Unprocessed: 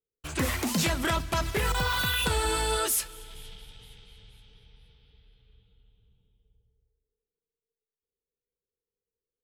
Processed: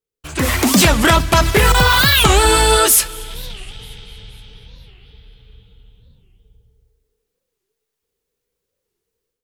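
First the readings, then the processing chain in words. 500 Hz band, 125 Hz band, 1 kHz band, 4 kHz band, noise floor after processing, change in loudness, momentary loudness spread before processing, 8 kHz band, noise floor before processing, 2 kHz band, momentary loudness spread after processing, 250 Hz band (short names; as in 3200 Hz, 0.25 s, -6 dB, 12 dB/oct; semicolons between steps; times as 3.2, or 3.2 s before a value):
+15.0 dB, +14.5 dB, +15.5 dB, +15.0 dB, -79 dBFS, +15.0 dB, 17 LU, +15.0 dB, under -85 dBFS, +14.5 dB, 19 LU, +14.5 dB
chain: AGC gain up to 11.5 dB; record warp 45 rpm, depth 250 cents; gain +4 dB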